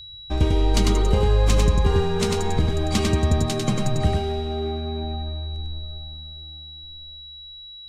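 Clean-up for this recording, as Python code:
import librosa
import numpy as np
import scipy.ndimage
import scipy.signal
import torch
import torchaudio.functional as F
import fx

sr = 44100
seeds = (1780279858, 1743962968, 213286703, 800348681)

y = fx.notch(x, sr, hz=3900.0, q=30.0)
y = fx.fix_echo_inverse(y, sr, delay_ms=98, level_db=-3.0)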